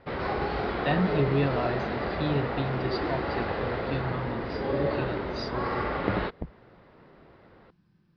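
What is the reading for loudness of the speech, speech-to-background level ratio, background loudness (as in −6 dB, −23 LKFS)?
−33.0 LKFS, −2.5 dB, −30.5 LKFS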